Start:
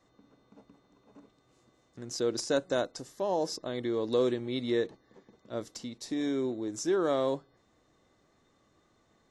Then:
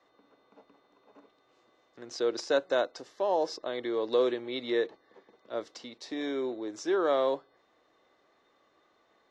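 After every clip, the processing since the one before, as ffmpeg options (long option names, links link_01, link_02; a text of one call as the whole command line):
ffmpeg -i in.wav -filter_complex "[0:a]acrossover=split=340 5000:gain=0.112 1 0.0631[link_01][link_02][link_03];[link_01][link_02][link_03]amix=inputs=3:normalize=0,volume=3.5dB" out.wav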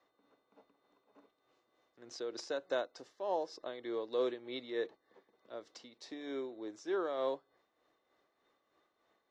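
ffmpeg -i in.wav -af "tremolo=f=3.3:d=0.52,volume=-6.5dB" out.wav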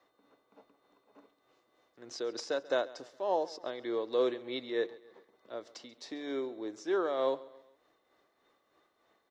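ffmpeg -i in.wav -af "aecho=1:1:136|272|408:0.1|0.044|0.0194,volume=4.5dB" out.wav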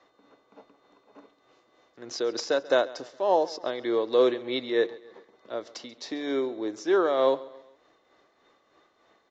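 ffmpeg -i in.wav -af "aresample=16000,aresample=44100,volume=8dB" out.wav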